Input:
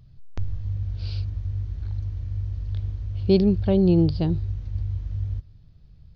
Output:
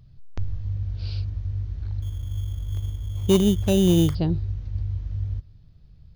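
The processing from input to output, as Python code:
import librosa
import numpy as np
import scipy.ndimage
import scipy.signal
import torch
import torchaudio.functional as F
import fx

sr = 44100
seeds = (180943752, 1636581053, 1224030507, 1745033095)

y = fx.sample_hold(x, sr, seeds[0], rate_hz=3300.0, jitter_pct=0, at=(2.02, 4.15))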